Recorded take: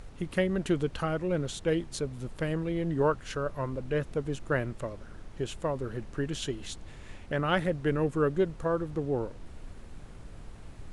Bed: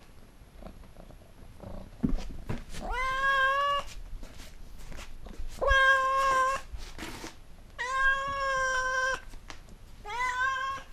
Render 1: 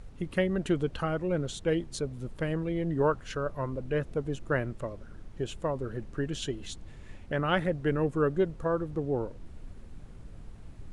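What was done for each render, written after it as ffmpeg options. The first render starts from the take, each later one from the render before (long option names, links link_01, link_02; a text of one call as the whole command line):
ffmpeg -i in.wav -af "afftdn=noise_reduction=6:noise_floor=-47" out.wav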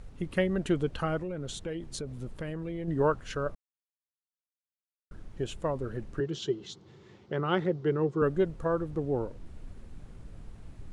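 ffmpeg -i in.wav -filter_complex "[0:a]asettb=1/sr,asplit=3[link_01][link_02][link_03];[link_01]atrim=end=1.194[link_04];[link_02]atrim=start=1.19:end=2.88,asetpts=PTS-STARTPTS,afade=type=in:duration=0.004:curve=qsin,afade=type=out:start_time=1.686:duration=0.004:curve=qsin,acompressor=threshold=-32dB:ratio=6:attack=3.2:release=140:knee=1:detection=peak[link_05];[link_03]atrim=start=2.876[link_06];[link_04][link_05]acrossfade=duration=0.004:curve1=hsin:curve2=qsin[link_07];[link_07][link_06]acrossfade=duration=0.004:curve1=qsin:curve2=hsin,asettb=1/sr,asplit=3[link_08][link_09][link_10];[link_08]atrim=end=6.204[link_11];[link_09]atrim=start=6.2:end=8.22,asetpts=PTS-STARTPTS,afade=type=in:duration=0.004:curve=qsin,afade=type=out:start_time=2.016:duration=0.004:curve=qsin,highpass=frequency=120:width=0.5412,highpass=frequency=120:width=1.3066,equalizer=frequency=260:width_type=q:width=4:gain=-9,equalizer=frequency=380:width_type=q:width=4:gain=9,equalizer=frequency=620:width_type=q:width=4:gain=-7,equalizer=frequency=1700:width_type=q:width=4:gain=-7,equalizer=frequency=2500:width_type=q:width=4:gain=-8,lowpass=frequency=6000:width=0.5412,lowpass=frequency=6000:width=1.3066[link_12];[link_10]atrim=start=8.216[link_13];[link_11][link_12]acrossfade=duration=0.004:curve1=hsin:curve2=qsin[link_14];[link_14][link_13]acrossfade=duration=0.004:curve1=qsin:curve2=hsin,asplit=3[link_15][link_16][link_17];[link_15]atrim=end=3.55,asetpts=PTS-STARTPTS,afade=type=out:start_time=3.546:duration=0.004:curve=hsin[link_18];[link_16]atrim=start=3.55:end=5.11,asetpts=PTS-STARTPTS,volume=0[link_19];[link_17]atrim=start=5.11,asetpts=PTS-STARTPTS,afade=type=in:duration=0.004:curve=hsin[link_20];[link_18][link_19][link_20]concat=n=3:v=0:a=1" out.wav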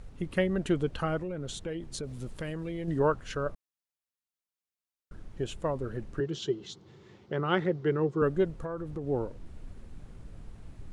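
ffmpeg -i in.wav -filter_complex "[0:a]asettb=1/sr,asplit=3[link_01][link_02][link_03];[link_01]atrim=end=2.034[link_04];[link_02]atrim=start=2.03:end=2.99,asetpts=PTS-STARTPTS,afade=type=in:duration=0.004:curve=qsin,afade=type=out:start_time=0.956:duration=0.004:curve=qsin,highshelf=frequency=2800:gain=8[link_05];[link_03]atrim=start=2.986[link_06];[link_04][link_05]acrossfade=duration=0.004:curve1=hsin:curve2=qsin[link_07];[link_07][link_06]acrossfade=duration=0.004:curve1=qsin:curve2=hsin,asettb=1/sr,asplit=3[link_08][link_09][link_10];[link_08]atrim=end=7.504[link_11];[link_09]atrim=start=7.5:end=8,asetpts=PTS-STARTPTS,afade=type=in:duration=0.004:curve=qsin,afade=type=out:start_time=0.496:duration=0.004:curve=qsin,equalizer=frequency=1900:width=1.5:gain=4[link_12];[link_10]atrim=start=7.996[link_13];[link_11][link_12]acrossfade=duration=0.004:curve1=hsin:curve2=qsin[link_14];[link_14][link_13]acrossfade=duration=0.004:curve1=qsin:curve2=hsin,asettb=1/sr,asplit=3[link_15][link_16][link_17];[link_15]atrim=end=8.524[link_18];[link_16]atrim=start=8.52:end=9.07,asetpts=PTS-STARTPTS,afade=type=in:duration=0.004:curve=qsin,afade=type=out:start_time=0.546:duration=0.004:curve=qsin,acompressor=threshold=-32dB:ratio=5:attack=3.2:release=140:knee=1:detection=peak[link_19];[link_17]atrim=start=9.066[link_20];[link_18][link_19]acrossfade=duration=0.004:curve1=hsin:curve2=qsin[link_21];[link_21][link_20]acrossfade=duration=0.004:curve1=qsin:curve2=hsin" out.wav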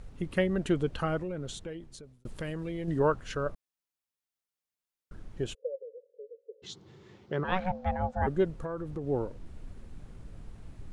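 ffmpeg -i in.wav -filter_complex "[0:a]asplit=3[link_01][link_02][link_03];[link_01]afade=type=out:start_time=5.53:duration=0.02[link_04];[link_02]asuperpass=centerf=500:order=8:qfactor=4.3,afade=type=in:start_time=5.53:duration=0.02,afade=type=out:start_time=6.62:duration=0.02[link_05];[link_03]afade=type=in:start_time=6.62:duration=0.02[link_06];[link_04][link_05][link_06]amix=inputs=3:normalize=0,asplit=3[link_07][link_08][link_09];[link_07]afade=type=out:start_time=7.43:duration=0.02[link_10];[link_08]aeval=exprs='val(0)*sin(2*PI*370*n/s)':channel_layout=same,afade=type=in:start_time=7.43:duration=0.02,afade=type=out:start_time=8.26:duration=0.02[link_11];[link_09]afade=type=in:start_time=8.26:duration=0.02[link_12];[link_10][link_11][link_12]amix=inputs=3:normalize=0,asplit=2[link_13][link_14];[link_13]atrim=end=2.25,asetpts=PTS-STARTPTS,afade=type=out:start_time=1.37:duration=0.88[link_15];[link_14]atrim=start=2.25,asetpts=PTS-STARTPTS,afade=type=in:duration=0.004:curve=hsin[link_16];[link_15][link_16]concat=n=2:v=0:a=1" out.wav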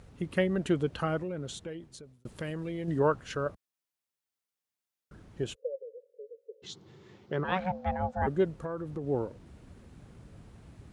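ffmpeg -i in.wav -af "highpass=73" out.wav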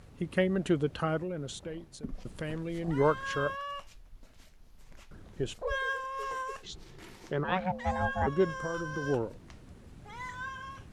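ffmpeg -i in.wav -i bed.wav -filter_complex "[1:a]volume=-11dB[link_01];[0:a][link_01]amix=inputs=2:normalize=0" out.wav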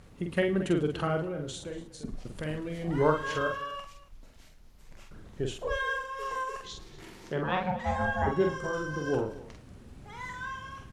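ffmpeg -i in.wav -filter_complex "[0:a]asplit=2[link_01][link_02];[link_02]adelay=46,volume=-4dB[link_03];[link_01][link_03]amix=inputs=2:normalize=0,aecho=1:1:108|239:0.119|0.119" out.wav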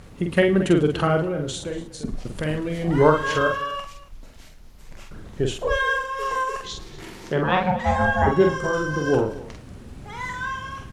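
ffmpeg -i in.wav -af "volume=9dB,alimiter=limit=-3dB:level=0:latency=1" out.wav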